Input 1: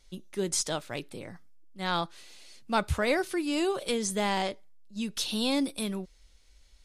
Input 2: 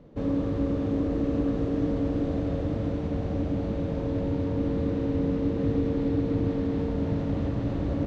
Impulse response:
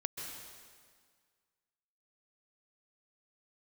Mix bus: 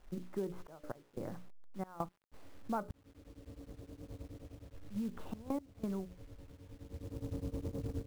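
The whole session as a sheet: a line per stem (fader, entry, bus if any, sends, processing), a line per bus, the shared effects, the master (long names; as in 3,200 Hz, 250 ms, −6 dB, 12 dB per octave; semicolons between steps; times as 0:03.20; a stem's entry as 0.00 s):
+2.5 dB, 0.00 s, muted 0:02.91–0:04.74, no send, mains-hum notches 60/120/180/240/300/360/420/480/540/600 Hz; gate pattern "xxxxxxxx..x..." 180 BPM −24 dB
0:03.90 −21 dB → 0:04.61 −13.5 dB → 0:06.56 −13.5 dB → 0:07.33 −7 dB, 2.15 s, no send, brickwall limiter −20.5 dBFS, peak gain reduction 5.5 dB; low shelf with overshoot 130 Hz +6 dB, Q 1.5; tremolo along a rectified sine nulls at 9.6 Hz; automatic ducking −13 dB, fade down 0.60 s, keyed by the first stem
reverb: not used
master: low-pass filter 1,300 Hz 24 dB per octave; log-companded quantiser 6 bits; downward compressor 4 to 1, threshold −36 dBFS, peak gain reduction 13.5 dB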